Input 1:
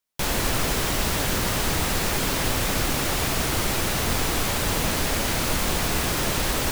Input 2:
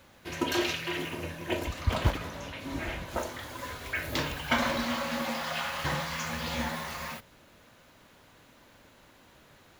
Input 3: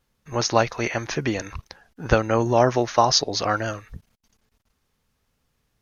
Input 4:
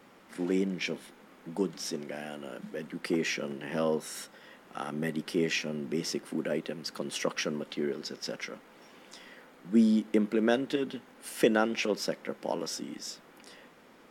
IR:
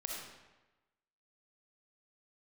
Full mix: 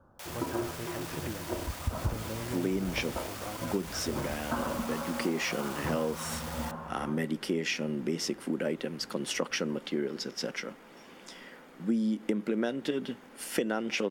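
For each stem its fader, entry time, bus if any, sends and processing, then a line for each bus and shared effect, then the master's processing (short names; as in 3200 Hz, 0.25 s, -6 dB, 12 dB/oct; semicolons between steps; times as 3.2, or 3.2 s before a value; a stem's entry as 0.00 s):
-14.0 dB, 0.00 s, no send, soft clip -21.5 dBFS, distortion -13 dB; HPF 520 Hz 24 dB/oct
-4.0 dB, 0.00 s, no send, steep low-pass 1500 Hz 72 dB/oct
-16.0 dB, 0.00 s, no send, treble ducked by the level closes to 300 Hz, closed at -16 dBFS
+2.0 dB, 2.15 s, no send, dry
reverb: off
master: low shelf 170 Hz +4 dB; notch 4000 Hz, Q 27; compressor, threshold -26 dBFS, peak gain reduction 10.5 dB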